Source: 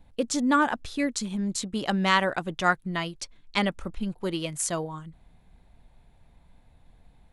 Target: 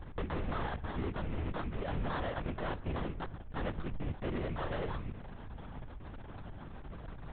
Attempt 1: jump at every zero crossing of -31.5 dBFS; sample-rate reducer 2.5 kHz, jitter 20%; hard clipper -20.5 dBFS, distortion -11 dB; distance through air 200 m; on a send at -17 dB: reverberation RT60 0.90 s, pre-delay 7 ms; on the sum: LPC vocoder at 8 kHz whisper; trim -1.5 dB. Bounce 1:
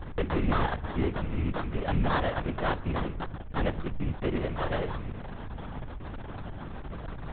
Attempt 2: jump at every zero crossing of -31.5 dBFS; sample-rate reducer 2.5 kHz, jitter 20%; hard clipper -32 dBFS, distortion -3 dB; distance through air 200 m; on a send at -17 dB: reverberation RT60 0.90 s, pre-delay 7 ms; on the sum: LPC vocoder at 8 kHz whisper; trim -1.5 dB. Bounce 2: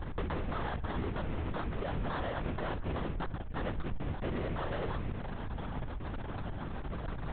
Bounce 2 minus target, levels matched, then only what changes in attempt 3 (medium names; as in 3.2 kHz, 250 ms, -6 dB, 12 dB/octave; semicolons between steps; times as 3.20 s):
jump at every zero crossing: distortion +8 dB
change: jump at every zero crossing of -40.5 dBFS